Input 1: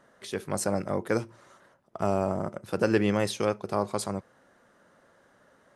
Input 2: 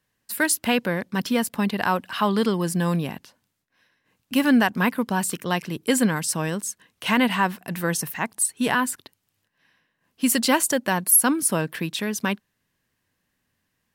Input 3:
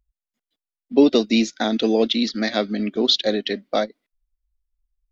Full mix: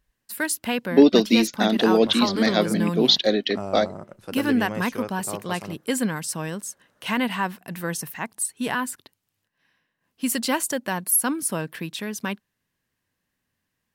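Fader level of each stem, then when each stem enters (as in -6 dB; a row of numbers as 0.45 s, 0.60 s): -6.0 dB, -4.0 dB, +0.5 dB; 1.55 s, 0.00 s, 0.00 s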